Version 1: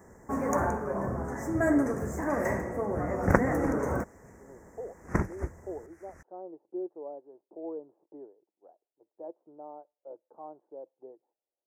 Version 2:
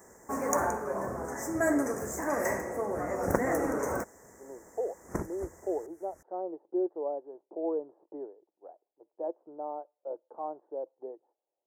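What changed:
speech +8.0 dB; second sound: add peaking EQ 2.8 kHz -14.5 dB 2.5 oct; master: add tone controls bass -10 dB, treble +9 dB

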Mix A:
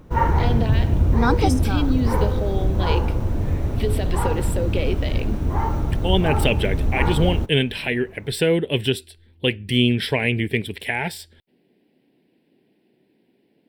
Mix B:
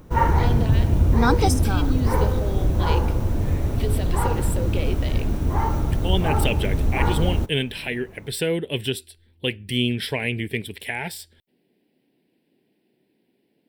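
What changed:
speech -5.0 dB; master: add treble shelf 5.5 kHz +8 dB

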